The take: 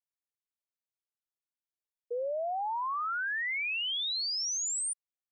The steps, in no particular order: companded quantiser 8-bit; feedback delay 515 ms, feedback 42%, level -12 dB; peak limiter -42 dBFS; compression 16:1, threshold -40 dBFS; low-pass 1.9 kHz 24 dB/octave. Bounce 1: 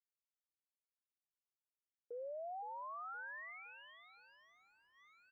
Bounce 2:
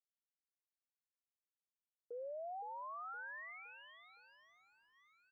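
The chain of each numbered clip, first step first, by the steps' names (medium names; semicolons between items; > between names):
feedback delay > compression > peak limiter > companded quantiser > low-pass; compression > companded quantiser > feedback delay > peak limiter > low-pass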